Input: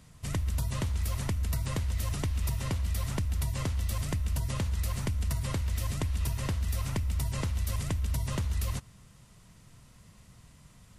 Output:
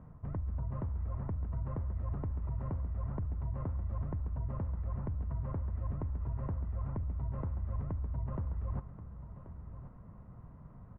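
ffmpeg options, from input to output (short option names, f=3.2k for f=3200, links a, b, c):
-af "lowpass=f=1.2k:w=0.5412,lowpass=f=1.2k:w=1.3066,areverse,acompressor=threshold=-39dB:ratio=4,areverse,aecho=1:1:1082:0.224,volume=4dB"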